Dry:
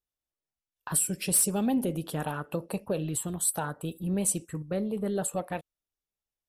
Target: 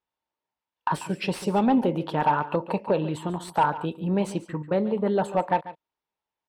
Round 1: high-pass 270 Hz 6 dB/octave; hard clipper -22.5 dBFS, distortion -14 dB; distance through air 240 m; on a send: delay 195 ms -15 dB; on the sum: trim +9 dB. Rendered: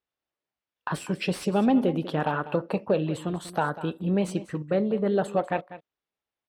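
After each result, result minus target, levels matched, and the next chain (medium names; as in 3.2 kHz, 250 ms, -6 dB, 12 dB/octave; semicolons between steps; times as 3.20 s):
echo 53 ms late; 1 kHz band -5.0 dB
high-pass 270 Hz 6 dB/octave; hard clipper -22.5 dBFS, distortion -14 dB; distance through air 240 m; on a send: delay 142 ms -15 dB; on the sum: trim +9 dB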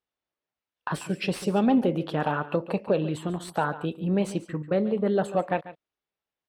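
1 kHz band -5.0 dB
high-pass 270 Hz 6 dB/octave; peaking EQ 920 Hz +13 dB 0.25 oct; hard clipper -22.5 dBFS, distortion -14 dB; distance through air 240 m; on a send: delay 142 ms -15 dB; on the sum: trim +9 dB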